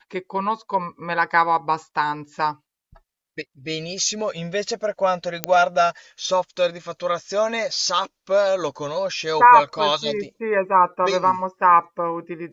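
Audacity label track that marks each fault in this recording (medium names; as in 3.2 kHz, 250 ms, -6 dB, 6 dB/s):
5.440000	5.440000	pop -3 dBFS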